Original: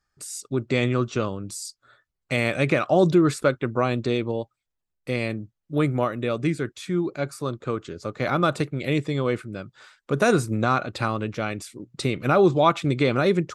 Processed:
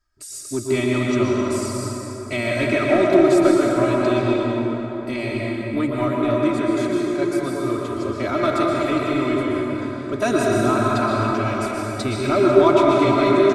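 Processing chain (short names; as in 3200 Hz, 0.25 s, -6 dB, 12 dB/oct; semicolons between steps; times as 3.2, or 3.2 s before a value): low shelf 78 Hz +6.5 dB; comb 3.1 ms, depth 96%; in parallel at -6 dB: soft clip -20.5 dBFS, distortion -6 dB; on the sum: plate-style reverb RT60 4.2 s, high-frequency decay 0.5×, pre-delay 0.105 s, DRR -4 dB; gain -6 dB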